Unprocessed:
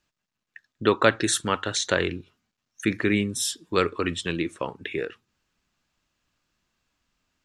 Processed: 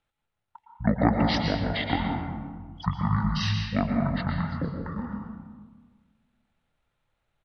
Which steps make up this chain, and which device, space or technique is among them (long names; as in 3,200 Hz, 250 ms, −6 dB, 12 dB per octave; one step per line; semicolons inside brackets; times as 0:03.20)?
0:01.81–0:02.91: parametric band 1,900 Hz +5.5 dB 0.58 octaves
monster voice (pitch shifter −11.5 semitones; low-shelf EQ 130 Hz +5 dB; convolution reverb RT60 1.5 s, pre-delay 108 ms, DRR 1.5 dB)
level −4.5 dB